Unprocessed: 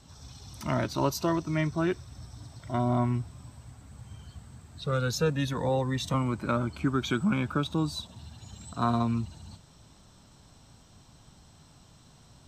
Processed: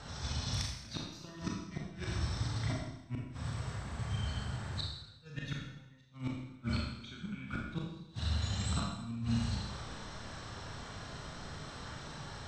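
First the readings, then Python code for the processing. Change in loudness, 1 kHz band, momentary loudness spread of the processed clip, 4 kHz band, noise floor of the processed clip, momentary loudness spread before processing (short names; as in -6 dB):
-10.5 dB, -12.5 dB, 11 LU, -2.0 dB, -54 dBFS, 20 LU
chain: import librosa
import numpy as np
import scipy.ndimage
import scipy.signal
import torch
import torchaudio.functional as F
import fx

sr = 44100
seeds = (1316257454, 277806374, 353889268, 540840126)

p1 = fx.band_shelf(x, sr, hz=580.0, db=-10.0, octaves=2.4)
p2 = fx.echo_feedback(p1, sr, ms=120, feedback_pct=35, wet_db=-14.5)
p3 = fx.level_steps(p2, sr, step_db=23)
p4 = p2 + (p3 * librosa.db_to_amplitude(-3.0))
p5 = fx.high_shelf(p4, sr, hz=2800.0, db=5.5)
p6 = fx.dmg_noise_band(p5, sr, seeds[0], low_hz=210.0, high_hz=1700.0, level_db=-58.0)
p7 = fx.gate_flip(p6, sr, shuts_db=-20.0, range_db=-26)
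p8 = scipy.signal.sosfilt(scipy.signal.butter(2, 4500.0, 'lowpass', fs=sr, output='sos'), p7)
p9 = fx.gate_flip(p8, sr, shuts_db=-29.0, range_db=-40)
p10 = fx.rev_schroeder(p9, sr, rt60_s=0.87, comb_ms=27, drr_db=-2.0)
y = p10 * librosa.db_to_amplitude(4.0)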